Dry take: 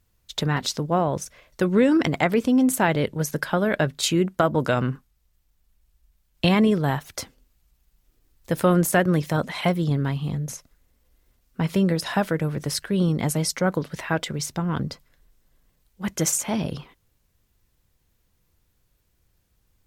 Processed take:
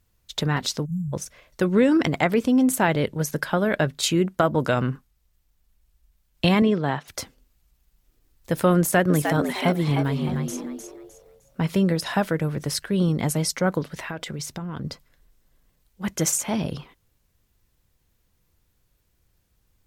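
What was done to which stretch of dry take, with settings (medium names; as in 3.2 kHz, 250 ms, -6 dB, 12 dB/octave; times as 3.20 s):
0.85–1.13 s: spectral selection erased 210–6000 Hz
6.62–7.08 s: band-pass 160–4700 Hz
8.79–11.72 s: frequency-shifting echo 306 ms, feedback 30%, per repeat +100 Hz, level -6.5 dB
13.84–14.85 s: compression, threshold -28 dBFS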